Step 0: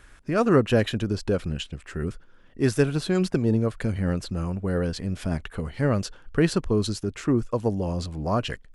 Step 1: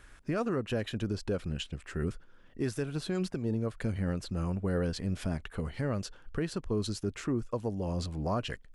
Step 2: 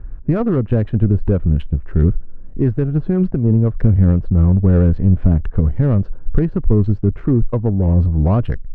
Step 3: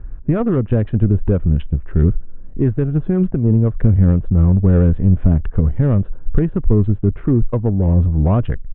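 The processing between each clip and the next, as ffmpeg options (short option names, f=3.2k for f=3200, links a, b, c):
-af "alimiter=limit=-18.5dB:level=0:latency=1:release=388,volume=-3.5dB"
-af "adynamicsmooth=sensitivity=3:basefreq=960,aemphasis=mode=reproduction:type=riaa,volume=9dB"
-af "aresample=8000,aresample=44100"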